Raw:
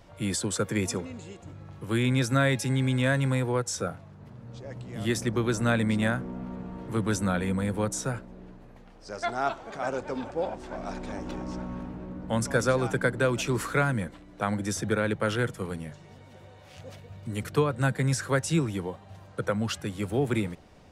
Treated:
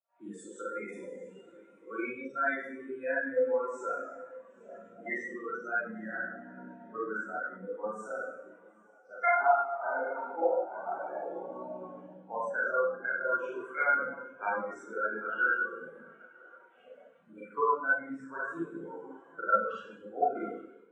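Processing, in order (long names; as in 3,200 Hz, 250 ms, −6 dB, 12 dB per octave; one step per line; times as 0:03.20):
spectral magnitudes quantised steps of 30 dB
high-pass filter 46 Hz 6 dB per octave
bit-depth reduction 8 bits, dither none
four-comb reverb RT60 1.3 s, combs from 33 ms, DRR −7 dB
in parallel at +1 dB: downward compressor, threshold −31 dBFS, peak gain reduction 17 dB
on the sum: parametric band 4,800 Hz −8 dB 0.58 octaves
mains-hum notches 60/120/180/240/300/360/420/480/540 Hz
speech leveller within 5 dB 0.5 s
meter weighting curve A
on a send: feedback delay with all-pass diffusion 858 ms, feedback 47%, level −9.5 dB
on the sum: pitch vibrato 1.4 Hz 19 cents
every bin expanded away from the loudest bin 2.5 to 1
level −5 dB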